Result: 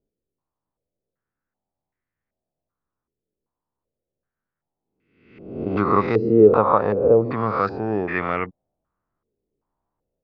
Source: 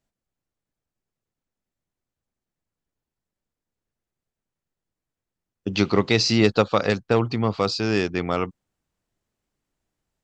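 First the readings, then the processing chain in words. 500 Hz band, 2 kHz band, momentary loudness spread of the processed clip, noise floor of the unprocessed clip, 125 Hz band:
+5.5 dB, -2.0 dB, 13 LU, under -85 dBFS, -2.0 dB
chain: spectral swells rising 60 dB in 0.80 s; stepped low-pass 2.6 Hz 430–1900 Hz; gain -3.5 dB

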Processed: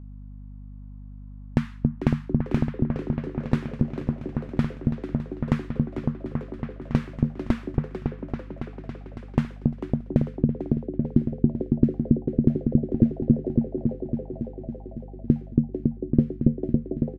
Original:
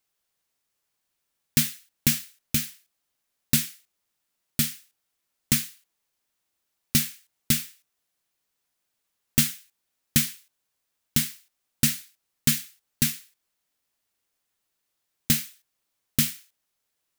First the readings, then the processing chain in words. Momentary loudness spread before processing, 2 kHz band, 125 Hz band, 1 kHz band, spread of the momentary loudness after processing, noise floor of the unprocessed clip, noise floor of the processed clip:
13 LU, -8.0 dB, +9.0 dB, +9.5 dB, 15 LU, -80 dBFS, -41 dBFS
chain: high shelf 12000 Hz +5.5 dB; compressor, threshold -20 dBFS, peak gain reduction 8 dB; repeats that get brighter 0.278 s, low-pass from 400 Hz, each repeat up 1 oct, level 0 dB; low-pass sweep 1000 Hz -> 350 Hz, 9.3–10.99; frequency-shifting echo 0.445 s, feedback 37%, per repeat +140 Hz, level -12 dB; hum 50 Hz, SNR 14 dB; gain +8 dB

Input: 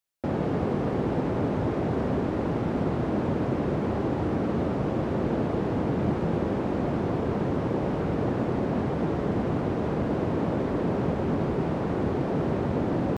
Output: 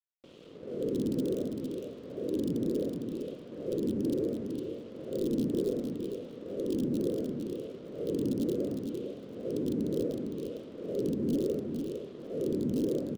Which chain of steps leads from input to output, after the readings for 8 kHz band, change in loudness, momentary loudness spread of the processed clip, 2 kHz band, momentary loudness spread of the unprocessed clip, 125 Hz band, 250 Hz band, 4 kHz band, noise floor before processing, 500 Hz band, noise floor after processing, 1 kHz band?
n/a, -6.5 dB, 10 LU, under -20 dB, 1 LU, -13.0 dB, -5.5 dB, -4.0 dB, -29 dBFS, -5.0 dB, -47 dBFS, under -25 dB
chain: wah 0.69 Hz 250–2500 Hz, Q 2.1; in parallel at -9.5 dB: wrapped overs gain 24 dB; on the sum: elliptic band-stop 510–3200 Hz, stop band 40 dB; crossover distortion -56.5 dBFS; on a send: feedback echo 0.457 s, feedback 18%, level -5.5 dB

